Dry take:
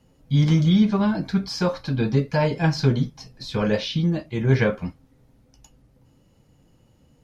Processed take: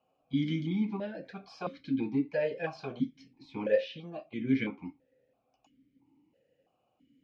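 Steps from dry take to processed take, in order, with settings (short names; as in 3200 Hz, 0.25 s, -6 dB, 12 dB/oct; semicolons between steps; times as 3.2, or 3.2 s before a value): vowel sequencer 3 Hz; gain +1.5 dB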